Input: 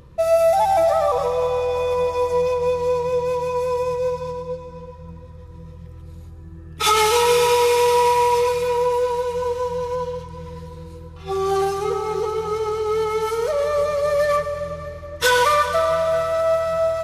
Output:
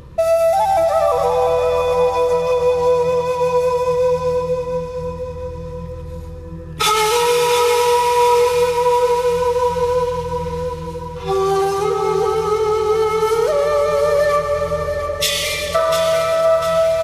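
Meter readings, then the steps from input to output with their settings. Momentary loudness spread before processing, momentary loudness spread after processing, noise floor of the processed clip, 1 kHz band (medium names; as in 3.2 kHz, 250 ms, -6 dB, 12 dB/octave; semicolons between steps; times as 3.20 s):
19 LU, 12 LU, -30 dBFS, +3.0 dB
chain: spectral replace 14.97–15.73 s, 230–1900 Hz before; compression 2.5:1, threshold -23 dBFS, peak gain reduction 7.5 dB; feedback delay 699 ms, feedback 46%, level -8 dB; trim +7.5 dB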